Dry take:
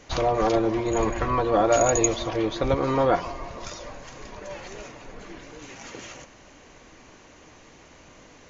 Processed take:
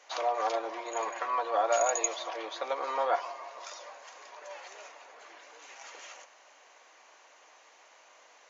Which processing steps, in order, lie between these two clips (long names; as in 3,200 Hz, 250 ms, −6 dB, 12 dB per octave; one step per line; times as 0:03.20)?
four-pole ladder high-pass 540 Hz, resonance 25%